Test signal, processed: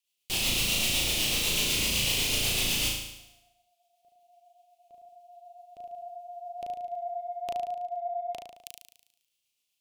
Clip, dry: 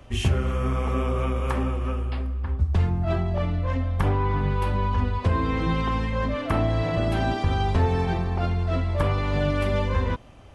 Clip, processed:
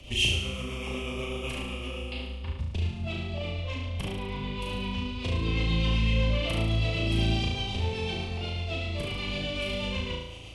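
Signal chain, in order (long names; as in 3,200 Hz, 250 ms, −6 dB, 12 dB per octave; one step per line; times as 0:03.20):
rotating-speaker cabinet horn 8 Hz
downward compressor 6 to 1, threshold −31 dBFS
high shelf with overshoot 2,100 Hz +9 dB, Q 3
flutter between parallel walls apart 6.2 metres, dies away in 0.85 s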